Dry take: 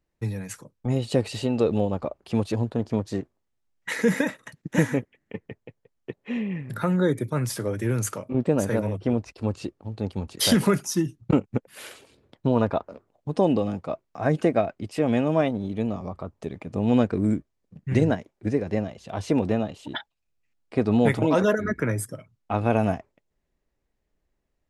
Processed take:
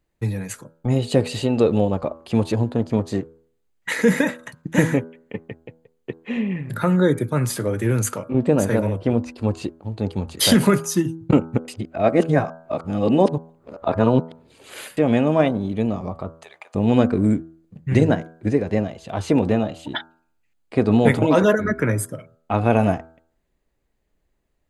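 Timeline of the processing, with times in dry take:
11.68–14.97 reverse
16.35–16.75 HPF 760 Hz 24 dB/oct
whole clip: notch 5500 Hz, Q 8.2; de-hum 81.45 Hz, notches 20; gain +5 dB

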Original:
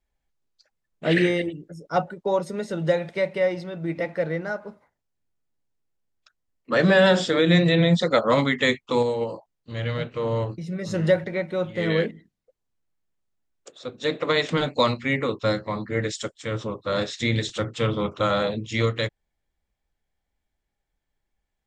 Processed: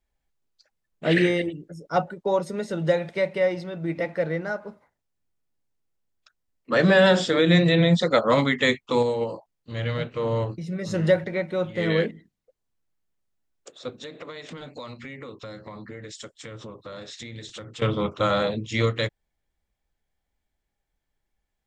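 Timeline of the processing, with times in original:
13.93–17.82 compressor, threshold -36 dBFS

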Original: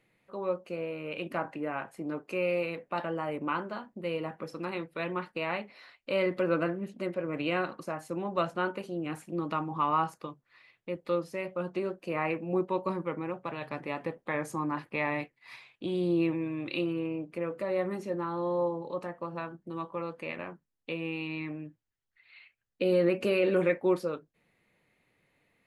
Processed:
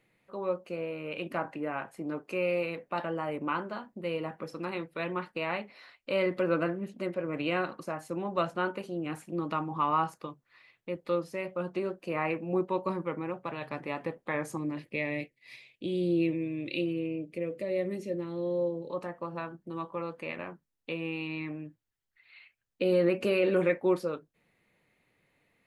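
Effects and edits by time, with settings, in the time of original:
14.57–18.9 band shelf 1100 Hz -15.5 dB 1.3 oct

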